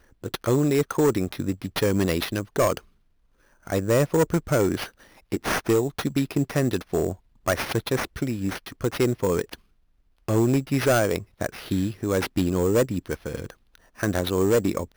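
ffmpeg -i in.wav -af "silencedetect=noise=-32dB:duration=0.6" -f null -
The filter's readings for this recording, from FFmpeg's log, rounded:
silence_start: 2.78
silence_end: 3.67 | silence_duration: 0.89
silence_start: 9.54
silence_end: 10.28 | silence_duration: 0.75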